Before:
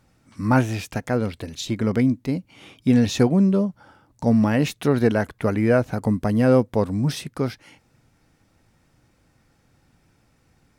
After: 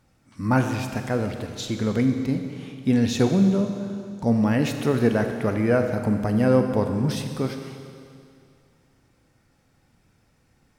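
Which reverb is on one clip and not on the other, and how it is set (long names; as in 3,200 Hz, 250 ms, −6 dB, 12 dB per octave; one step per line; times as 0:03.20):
four-comb reverb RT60 2.4 s, combs from 30 ms, DRR 5.5 dB
level −2.5 dB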